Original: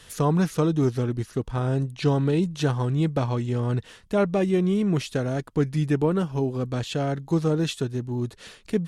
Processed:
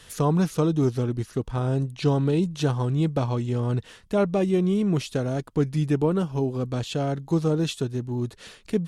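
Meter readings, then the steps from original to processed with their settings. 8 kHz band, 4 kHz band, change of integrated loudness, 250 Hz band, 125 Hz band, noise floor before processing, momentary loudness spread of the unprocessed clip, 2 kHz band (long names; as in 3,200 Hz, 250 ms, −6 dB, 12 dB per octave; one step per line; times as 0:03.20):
0.0 dB, −0.5 dB, 0.0 dB, 0.0 dB, 0.0 dB, −51 dBFS, 7 LU, −3.0 dB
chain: dynamic equaliser 1,800 Hz, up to −5 dB, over −47 dBFS, Q 2.1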